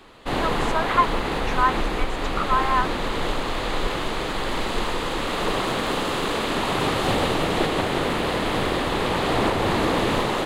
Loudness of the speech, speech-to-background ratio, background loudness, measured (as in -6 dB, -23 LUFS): -25.0 LUFS, -0.5 dB, -24.5 LUFS